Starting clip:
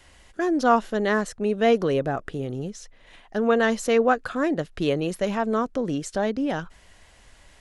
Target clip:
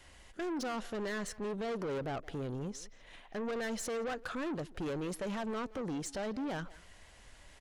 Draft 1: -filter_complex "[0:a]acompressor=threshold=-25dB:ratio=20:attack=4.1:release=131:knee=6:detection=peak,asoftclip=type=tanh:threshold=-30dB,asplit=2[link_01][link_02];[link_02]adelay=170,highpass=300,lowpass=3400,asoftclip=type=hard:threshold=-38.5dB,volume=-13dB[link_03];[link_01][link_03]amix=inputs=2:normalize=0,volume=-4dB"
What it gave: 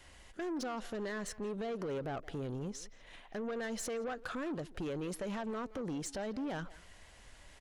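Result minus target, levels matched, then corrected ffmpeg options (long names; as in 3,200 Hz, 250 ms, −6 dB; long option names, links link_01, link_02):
downward compressor: peak gain reduction +6.5 dB
-filter_complex "[0:a]acompressor=threshold=-18dB:ratio=20:attack=4.1:release=131:knee=6:detection=peak,asoftclip=type=tanh:threshold=-30dB,asplit=2[link_01][link_02];[link_02]adelay=170,highpass=300,lowpass=3400,asoftclip=type=hard:threshold=-38.5dB,volume=-13dB[link_03];[link_01][link_03]amix=inputs=2:normalize=0,volume=-4dB"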